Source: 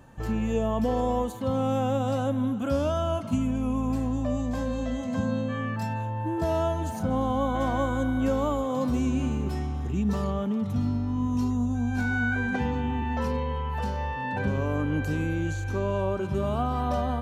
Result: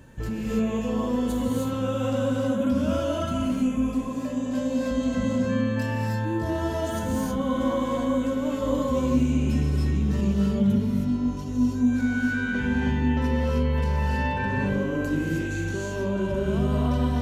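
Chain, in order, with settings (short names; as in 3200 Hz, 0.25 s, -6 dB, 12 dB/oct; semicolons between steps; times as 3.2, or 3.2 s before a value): bell 770 Hz -13.5 dB 0.42 oct; notch 1200 Hz, Q 5.9; in parallel at -6 dB: soft clip -26.5 dBFS, distortion -13 dB; on the sum: limiter -23 dBFS, peak gain reduction 8.5 dB; 3.77–4.91 HPF 150 Hz 6 dB/oct; non-linear reverb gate 0.34 s rising, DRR -4 dB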